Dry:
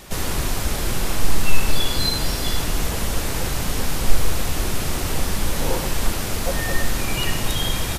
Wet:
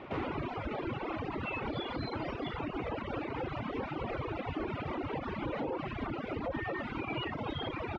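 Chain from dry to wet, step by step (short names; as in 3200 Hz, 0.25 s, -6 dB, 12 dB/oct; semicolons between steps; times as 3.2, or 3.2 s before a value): 5.91–6.64 octaver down 2 oct, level +3 dB; speaker cabinet 130–2300 Hz, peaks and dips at 180 Hz -9 dB, 310 Hz +5 dB, 1700 Hz -9 dB; reverb removal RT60 1.8 s; limiter -26 dBFS, peak gain reduction 12 dB; reverb removal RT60 0.84 s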